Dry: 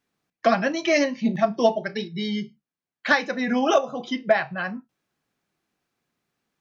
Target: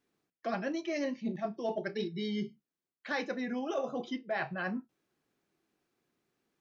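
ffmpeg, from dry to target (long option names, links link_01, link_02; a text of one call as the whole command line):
ffmpeg -i in.wav -af "equalizer=frequency=360:width=1.6:gain=8,areverse,acompressor=threshold=-27dB:ratio=12,areverse,volume=-4dB" out.wav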